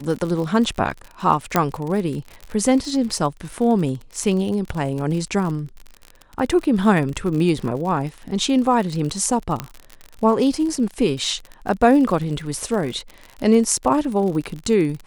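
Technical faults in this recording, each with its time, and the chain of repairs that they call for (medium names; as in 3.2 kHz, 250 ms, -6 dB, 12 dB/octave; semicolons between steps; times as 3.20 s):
crackle 49 per s -27 dBFS
1.56 s: pop -2 dBFS
9.60 s: pop -10 dBFS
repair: de-click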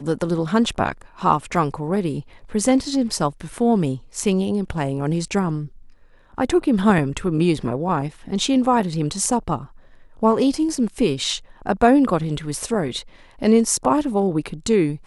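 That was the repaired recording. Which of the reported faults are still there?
1.56 s: pop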